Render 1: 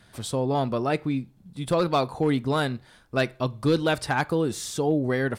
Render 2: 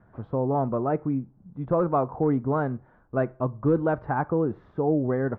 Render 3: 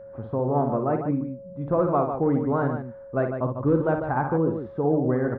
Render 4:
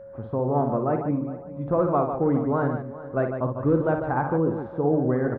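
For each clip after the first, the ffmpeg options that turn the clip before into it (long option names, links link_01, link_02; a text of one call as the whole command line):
ffmpeg -i in.wav -af "lowpass=frequency=1300:width=0.5412,lowpass=frequency=1300:width=1.3066" out.wav
ffmpeg -i in.wav -filter_complex "[0:a]asplit=2[link_01][link_02];[link_02]aecho=0:1:56|148:0.473|0.422[link_03];[link_01][link_03]amix=inputs=2:normalize=0,aeval=exprs='val(0)+0.01*sin(2*PI*550*n/s)':channel_layout=same" out.wav
ffmpeg -i in.wav -af "aecho=1:1:409|818|1227:0.141|0.0396|0.0111" out.wav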